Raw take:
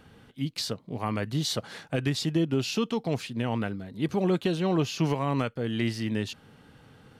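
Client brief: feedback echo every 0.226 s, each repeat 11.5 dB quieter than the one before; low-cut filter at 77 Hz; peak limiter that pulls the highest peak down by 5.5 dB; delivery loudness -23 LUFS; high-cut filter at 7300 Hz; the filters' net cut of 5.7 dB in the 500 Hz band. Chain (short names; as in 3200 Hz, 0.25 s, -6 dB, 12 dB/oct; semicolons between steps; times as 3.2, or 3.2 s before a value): HPF 77 Hz; LPF 7300 Hz; bell 500 Hz -8 dB; limiter -21 dBFS; feedback echo 0.226 s, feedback 27%, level -11.5 dB; gain +9.5 dB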